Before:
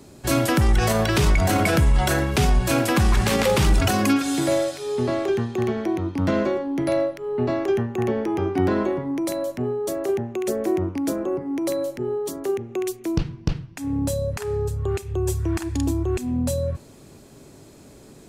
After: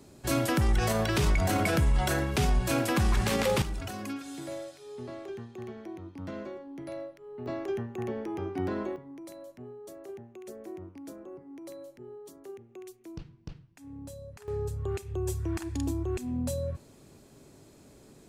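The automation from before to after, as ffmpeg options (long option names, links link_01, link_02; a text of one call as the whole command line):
ffmpeg -i in.wav -af "asetnsamples=nb_out_samples=441:pad=0,asendcmd='3.62 volume volume -17.5dB;7.46 volume volume -11dB;8.96 volume volume -19.5dB;14.48 volume volume -8dB',volume=-7dB" out.wav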